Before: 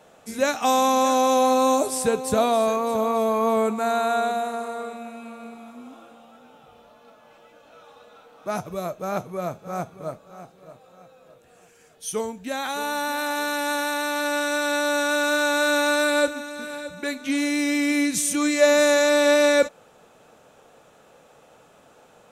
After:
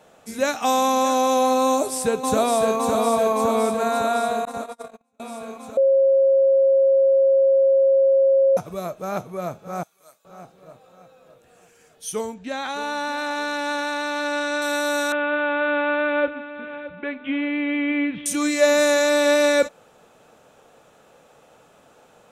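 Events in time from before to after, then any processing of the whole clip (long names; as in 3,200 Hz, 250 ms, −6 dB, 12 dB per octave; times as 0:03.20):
0:01.67–0:02.77: delay throw 560 ms, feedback 70%, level −4 dB
0:04.45–0:05.20: noise gate −29 dBFS, range −38 dB
0:05.77–0:08.57: beep over 541 Hz −13 dBFS
0:09.83–0:10.25: first difference
0:12.34–0:14.62: low-pass filter 5,500 Hz
0:15.12–0:18.26: Chebyshev low-pass filter 3,300 Hz, order 6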